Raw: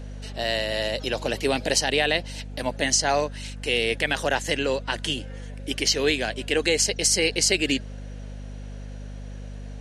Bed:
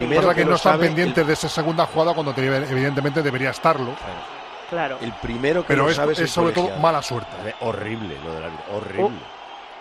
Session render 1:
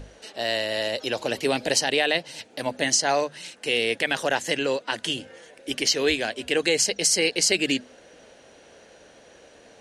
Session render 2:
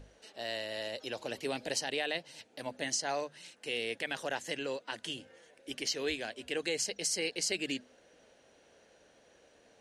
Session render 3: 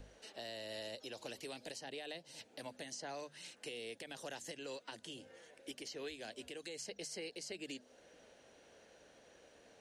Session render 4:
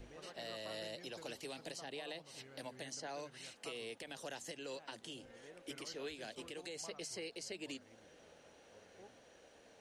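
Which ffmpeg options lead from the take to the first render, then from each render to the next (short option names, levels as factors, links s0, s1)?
-af "bandreject=f=50:t=h:w=6,bandreject=f=100:t=h:w=6,bandreject=f=150:t=h:w=6,bandreject=f=200:t=h:w=6,bandreject=f=250:t=h:w=6"
-af "volume=0.251"
-filter_complex "[0:a]acrossover=split=380|990|3700[s0][s1][s2][s3];[s0]acompressor=threshold=0.00251:ratio=4[s4];[s1]acompressor=threshold=0.00355:ratio=4[s5];[s2]acompressor=threshold=0.00224:ratio=4[s6];[s3]acompressor=threshold=0.00398:ratio=4[s7];[s4][s5][s6][s7]amix=inputs=4:normalize=0,alimiter=level_in=3.35:limit=0.0631:level=0:latency=1:release=208,volume=0.299"
-filter_complex "[1:a]volume=0.0119[s0];[0:a][s0]amix=inputs=2:normalize=0"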